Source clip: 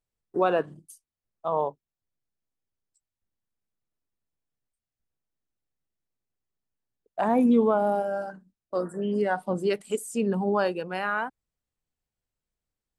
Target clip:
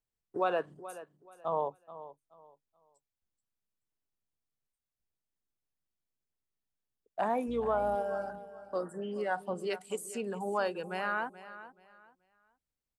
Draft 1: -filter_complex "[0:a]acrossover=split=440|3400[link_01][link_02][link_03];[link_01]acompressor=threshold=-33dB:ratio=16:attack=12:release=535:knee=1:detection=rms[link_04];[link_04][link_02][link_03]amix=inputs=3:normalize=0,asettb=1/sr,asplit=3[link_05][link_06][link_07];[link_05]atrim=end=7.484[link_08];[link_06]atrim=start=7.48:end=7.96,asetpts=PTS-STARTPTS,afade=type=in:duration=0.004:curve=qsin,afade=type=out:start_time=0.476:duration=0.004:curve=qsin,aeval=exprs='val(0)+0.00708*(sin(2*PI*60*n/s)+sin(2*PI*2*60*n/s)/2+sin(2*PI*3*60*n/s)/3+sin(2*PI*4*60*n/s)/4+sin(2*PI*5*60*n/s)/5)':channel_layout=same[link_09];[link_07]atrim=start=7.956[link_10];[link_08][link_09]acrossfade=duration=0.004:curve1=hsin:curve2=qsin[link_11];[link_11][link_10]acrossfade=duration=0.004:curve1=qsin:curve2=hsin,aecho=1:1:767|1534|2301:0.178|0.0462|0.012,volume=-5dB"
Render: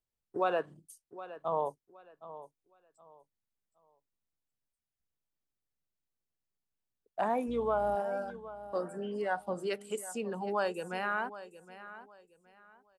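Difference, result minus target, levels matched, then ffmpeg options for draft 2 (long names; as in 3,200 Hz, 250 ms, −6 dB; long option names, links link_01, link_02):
echo 338 ms late
-filter_complex "[0:a]acrossover=split=440|3400[link_01][link_02][link_03];[link_01]acompressor=threshold=-33dB:ratio=16:attack=12:release=535:knee=1:detection=rms[link_04];[link_04][link_02][link_03]amix=inputs=3:normalize=0,asettb=1/sr,asplit=3[link_05][link_06][link_07];[link_05]atrim=end=7.484[link_08];[link_06]atrim=start=7.48:end=7.96,asetpts=PTS-STARTPTS,afade=type=in:duration=0.004:curve=qsin,afade=type=out:start_time=0.476:duration=0.004:curve=qsin,aeval=exprs='val(0)+0.00708*(sin(2*PI*60*n/s)+sin(2*PI*2*60*n/s)/2+sin(2*PI*3*60*n/s)/3+sin(2*PI*4*60*n/s)/4+sin(2*PI*5*60*n/s)/5)':channel_layout=same[link_09];[link_07]atrim=start=7.956[link_10];[link_08][link_09]acrossfade=duration=0.004:curve1=hsin:curve2=qsin[link_11];[link_11][link_10]acrossfade=duration=0.004:curve1=qsin:curve2=hsin,aecho=1:1:429|858|1287:0.178|0.0462|0.012,volume=-5dB"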